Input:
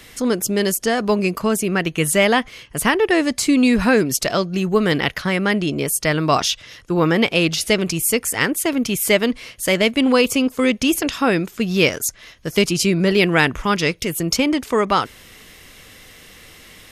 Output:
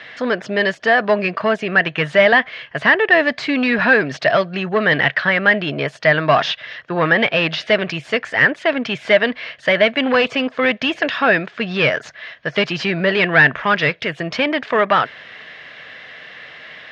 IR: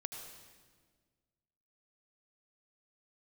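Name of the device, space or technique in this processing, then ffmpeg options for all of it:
overdrive pedal into a guitar cabinet: -filter_complex "[0:a]asplit=2[link_01][link_02];[link_02]highpass=frequency=720:poles=1,volume=18dB,asoftclip=type=tanh:threshold=-1dB[link_03];[link_01][link_03]amix=inputs=2:normalize=0,lowpass=frequency=6300:poles=1,volume=-6dB,highpass=89,equalizer=frequency=140:width_type=q:width=4:gain=8,equalizer=frequency=340:width_type=q:width=4:gain=-4,equalizer=frequency=640:width_type=q:width=4:gain=9,equalizer=frequency=1700:width_type=q:width=4:gain=10,lowpass=frequency=3800:width=0.5412,lowpass=frequency=3800:width=1.3066,volume=-6.5dB"

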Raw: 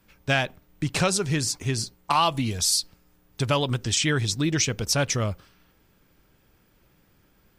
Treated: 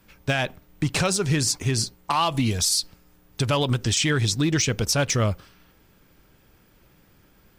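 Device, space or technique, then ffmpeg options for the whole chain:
limiter into clipper: -af "alimiter=limit=-16.5dB:level=0:latency=1:release=66,asoftclip=type=hard:threshold=-18.5dB,volume=4.5dB"

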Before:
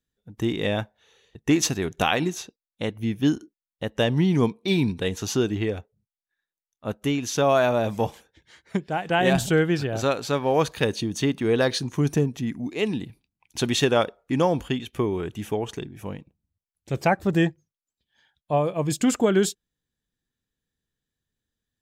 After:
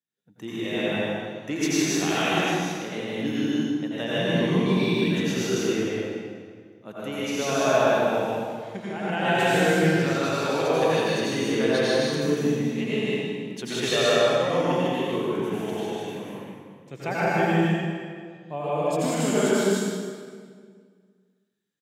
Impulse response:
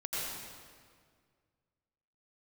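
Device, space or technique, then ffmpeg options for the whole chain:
stadium PA: -filter_complex "[0:a]highpass=frequency=140:width=0.5412,highpass=frequency=140:width=1.3066,equalizer=frequency=2200:width_type=o:width=1.5:gain=3,aecho=1:1:154.5|198.3:0.794|0.631[link_01];[1:a]atrim=start_sample=2205[link_02];[link_01][link_02]afir=irnorm=-1:irlink=0,asettb=1/sr,asplit=3[link_03][link_04][link_05];[link_03]atrim=end=13.884[link_06];[link_04]atrim=start=13.88:end=14.61,asetpts=PTS-STARTPTS,afade=type=in:duration=0.004:curve=qsin,afade=type=out:start_time=0.726:duration=0.004:curve=qsin,aecho=1:1:1.7:0.52,atrim=end_sample=32193[link_07];[link_05]atrim=start=14.606[link_08];[link_06][link_07]acrossfade=duration=0.004:curve1=hsin:curve2=qsin[link_09];[link_09][link_08]acrossfade=duration=0.004:curve1=qsin:curve2=hsin,volume=-7.5dB"

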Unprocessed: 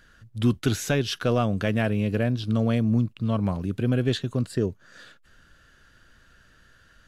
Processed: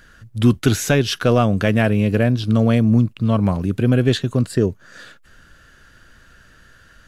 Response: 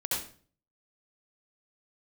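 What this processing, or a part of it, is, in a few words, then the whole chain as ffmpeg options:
exciter from parts: -filter_complex "[0:a]asplit=2[link_01][link_02];[link_02]highpass=2700,asoftclip=type=tanh:threshold=-27dB,highpass=frequency=2300:width=0.5412,highpass=frequency=2300:width=1.3066,volume=-13.5dB[link_03];[link_01][link_03]amix=inputs=2:normalize=0,volume=7.5dB"

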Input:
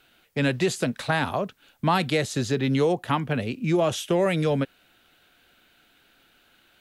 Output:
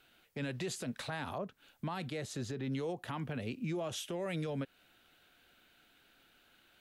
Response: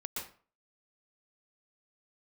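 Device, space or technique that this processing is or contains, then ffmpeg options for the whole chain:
stacked limiters: -filter_complex "[0:a]alimiter=limit=-15dB:level=0:latency=1:release=91,alimiter=limit=-18dB:level=0:latency=1,alimiter=limit=-24dB:level=0:latency=1:release=168,asettb=1/sr,asplit=3[link_01][link_02][link_03];[link_01]atrim=end=1.384[link_04];[link_02]atrim=start=1.38:end=2.72,asetpts=PTS-STARTPTS,afade=type=in:duration=0.004:curve=qsin,afade=type=out:start_time=1.336:duration=0.004:curve=qsin,adynamicequalizer=threshold=0.00355:dfrequency=2000:dqfactor=0.7:tfrequency=2000:tqfactor=0.7:attack=5:release=100:ratio=0.375:range=3:mode=cutabove:tftype=highshelf[link_05];[link_03]atrim=start=2.716[link_06];[link_04][link_05]acrossfade=duration=0.004:curve1=hsin:curve2=qsin[link_07];[link_07][link_06]acrossfade=duration=0.004:curve1=qsin:curve2=hsin,volume=-6dB"

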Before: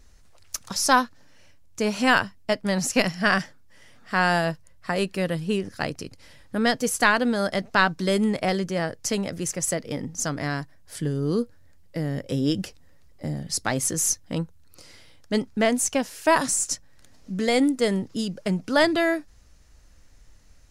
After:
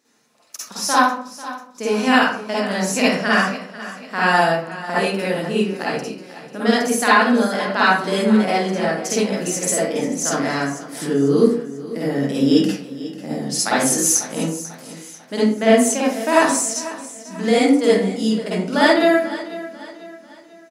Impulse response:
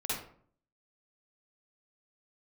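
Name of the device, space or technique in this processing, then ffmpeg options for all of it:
far laptop microphone: -filter_complex "[1:a]atrim=start_sample=2205[link_01];[0:a][link_01]afir=irnorm=-1:irlink=0,highpass=frequency=200:width=0.5412,highpass=frequency=200:width=1.3066,dynaudnorm=framelen=340:gausssize=9:maxgain=11.5dB,aecho=1:1:493|986|1479|1972:0.168|0.0705|0.0296|0.0124,volume=-1dB"

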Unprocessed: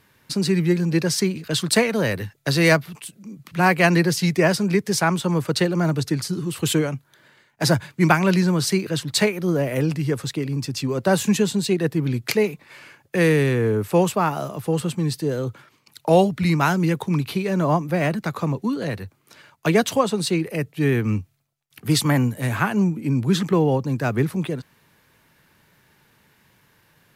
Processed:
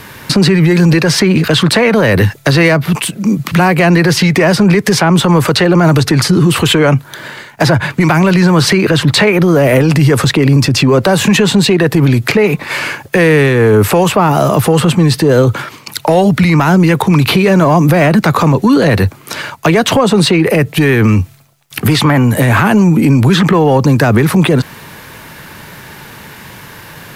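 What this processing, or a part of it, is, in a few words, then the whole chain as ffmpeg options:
mastering chain: -filter_complex "[0:a]equalizer=frequency=930:width_type=o:width=1.4:gain=2,acrossover=split=580|3200[link_01][link_02][link_03];[link_01]acompressor=threshold=-23dB:ratio=4[link_04];[link_02]acompressor=threshold=-25dB:ratio=4[link_05];[link_03]acompressor=threshold=-44dB:ratio=4[link_06];[link_04][link_05][link_06]amix=inputs=3:normalize=0,acompressor=threshold=-27dB:ratio=2,asoftclip=type=tanh:threshold=-17.5dB,alimiter=level_in=27dB:limit=-1dB:release=50:level=0:latency=1,volume=-1dB"

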